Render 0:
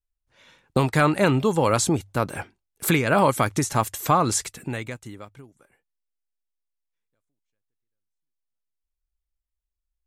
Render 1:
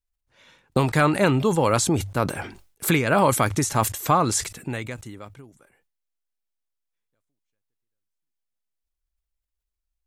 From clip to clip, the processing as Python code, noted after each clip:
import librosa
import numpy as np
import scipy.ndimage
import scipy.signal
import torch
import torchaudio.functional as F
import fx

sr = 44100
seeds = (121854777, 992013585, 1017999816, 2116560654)

y = fx.sustainer(x, sr, db_per_s=110.0)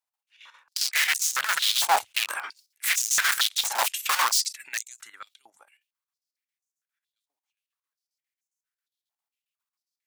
y = (np.mod(10.0 ** (19.5 / 20.0) * x + 1.0, 2.0) - 1.0) / 10.0 ** (19.5 / 20.0)
y = fx.chopper(y, sr, hz=7.4, depth_pct=65, duty_pct=70)
y = fx.filter_held_highpass(y, sr, hz=4.4, low_hz=830.0, high_hz=6500.0)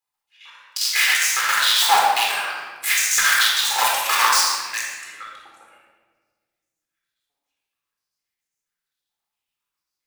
y = fx.room_shoebox(x, sr, seeds[0], volume_m3=1500.0, walls='mixed', distance_m=4.0)